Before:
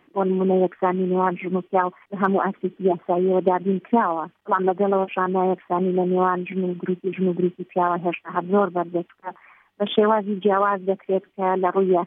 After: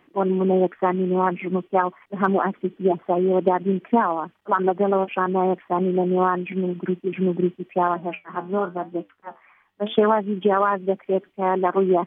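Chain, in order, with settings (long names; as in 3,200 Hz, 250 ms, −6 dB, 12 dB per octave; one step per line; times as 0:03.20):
0:07.94–0:09.98: flanger 1 Hz, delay 8.6 ms, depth 5.8 ms, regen +66%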